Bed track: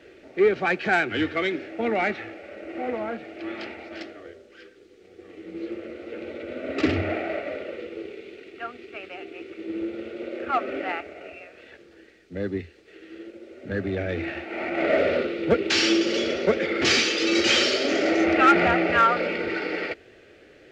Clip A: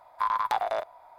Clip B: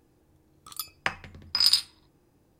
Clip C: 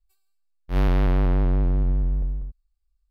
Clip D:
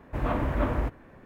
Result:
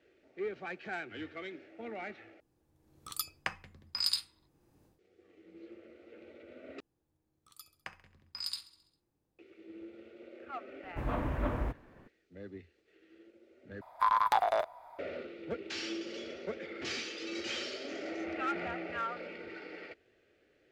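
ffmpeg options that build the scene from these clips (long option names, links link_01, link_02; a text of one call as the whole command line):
ffmpeg -i bed.wav -i cue0.wav -i cue1.wav -i cue2.wav -i cue3.wav -filter_complex "[2:a]asplit=2[link_01][link_02];[0:a]volume=-18dB[link_03];[link_01]dynaudnorm=framelen=350:gausssize=3:maxgain=16.5dB[link_04];[link_02]aecho=1:1:67|134|201|268|335|402:0.141|0.0833|0.0492|0.029|0.0171|0.0101[link_05];[link_03]asplit=4[link_06][link_07][link_08][link_09];[link_06]atrim=end=2.404[link_10];[link_04]atrim=end=2.59,asetpts=PTS-STARTPTS,volume=-12.5dB[link_11];[link_07]atrim=start=4.986:end=6.804[link_12];[link_05]atrim=end=2.59,asetpts=PTS-STARTPTS,volume=-17.5dB[link_13];[link_08]atrim=start=9.386:end=13.814[link_14];[1:a]atrim=end=1.18,asetpts=PTS-STARTPTS,volume=-0.5dB[link_15];[link_09]atrim=start=14.986[link_16];[4:a]atrim=end=1.25,asetpts=PTS-STARTPTS,volume=-6.5dB,afade=type=in:duration=0.004:curve=hsin,afade=type=out:start_time=1.246:duration=0.004:curve=hsin,adelay=10830[link_17];[link_10][link_11]acrossfade=duration=0.004:curve1=hsin:curve2=hsin[link_18];[link_18][link_12]acrossfade=duration=0.004:curve1=hsin:curve2=hsin[link_19];[link_19][link_13]acrossfade=duration=0.004:curve1=hsin:curve2=hsin[link_20];[link_20][link_14]acrossfade=duration=0.004:curve1=hsin:curve2=hsin[link_21];[link_21][link_15]acrossfade=duration=0.004:curve1=hsin:curve2=hsin[link_22];[link_22][link_16]acrossfade=duration=0.004:curve1=hsin:curve2=hsin[link_23];[link_23][link_17]amix=inputs=2:normalize=0" out.wav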